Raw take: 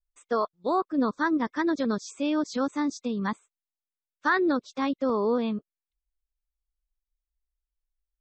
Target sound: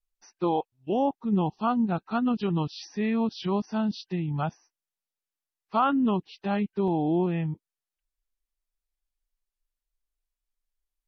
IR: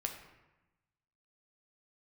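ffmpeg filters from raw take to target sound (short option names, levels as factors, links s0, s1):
-af "asetrate=32667,aresample=44100"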